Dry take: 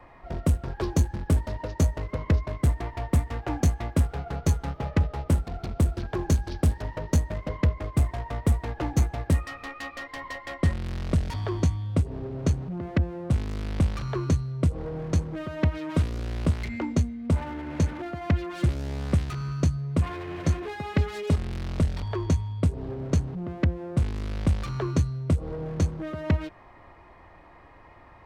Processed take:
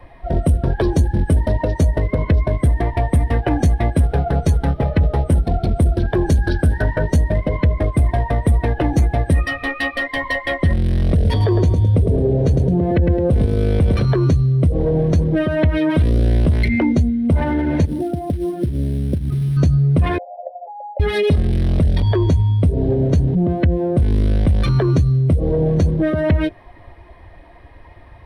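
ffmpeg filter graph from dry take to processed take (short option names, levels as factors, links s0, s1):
-filter_complex "[0:a]asettb=1/sr,asplit=3[s0][s1][s2];[s0]atrim=end=6.424[s3];[s1]atrim=start=6.42:end=7.1,asetpts=PTS-STARTPTS,afade=t=in:d=0.004:c=qsin,afade=t=out:st=0.676:d=0.004:c=qsin,equalizer=f=1500:w=5.3:g=11,acompressor=threshold=0.0708:ratio=2:attack=3.2:release=140:knee=1:detection=peak[s4];[s2]atrim=start=7.096[s5];[s3][s4]acrossfade=d=0.004:c1=hsin:c2=qsin[s6];[s6][s5]acrossfade=d=0.004:c1=qsin:c2=hsin,asettb=1/sr,asplit=3[s7][s8][s9];[s7]atrim=end=11.144[s10];[s8]atrim=start=11.14:end=14.06,asetpts=PTS-STARTPTS,afade=t=in:d=0.004:c=qsin,afade=t=out:st=2.916:d=0.004:c=qsin,equalizer=f=460:w=3.4:g=8.5,aecho=1:1:107|214|321:0.398|0.0995|0.0249,atrim=end_sample=128772[s11];[s9]atrim=start=14.056[s12];[s10][s11]acrossfade=d=0.004:c1=hsin:c2=qsin[s13];[s13][s12]acrossfade=d=0.004:c1=qsin:c2=hsin,asettb=1/sr,asplit=3[s14][s15][s16];[s14]atrim=end=17.854[s17];[s15]atrim=start=17.85:end=19.57,asetpts=PTS-STARTPTS,afade=t=in:d=0.004:c=qsin,afade=t=out:st=1.716:d=0.004:c=qsin,bandpass=f=170:t=q:w=0.59,acrusher=bits=4:mode=log:mix=0:aa=0.000001,acompressor=threshold=0.0251:ratio=12:attack=3.2:release=140:knee=1:detection=peak[s18];[s16]atrim=start=19.566[s19];[s17][s18]acrossfade=d=0.004:c1=hsin:c2=qsin[s20];[s20][s19]acrossfade=d=0.004:c1=qsin:c2=hsin,asettb=1/sr,asplit=3[s21][s22][s23];[s21]atrim=end=20.184[s24];[s22]atrim=start=20.18:end=21,asetpts=PTS-STARTPTS,afade=t=in:d=0.004:c=qsin,afade=t=out:st=0.816:d=0.004:c=qsin,asuperpass=centerf=670:order=12:qfactor=1.8,acompressor=threshold=0.00562:ratio=2:attack=3.2:release=140:knee=1:detection=peak[s25];[s23]atrim=start=20.996[s26];[s24][s25]acrossfade=d=0.004:c1=hsin:c2=qsin[s27];[s27][s26]acrossfade=d=0.004:c1=qsin:c2=hsin,afftdn=nr=12:nf=-40,superequalizer=9b=0.562:10b=0.447:13b=1.58:15b=0.447:16b=2.24,alimiter=level_in=16.8:limit=0.891:release=50:level=0:latency=1,volume=0.422"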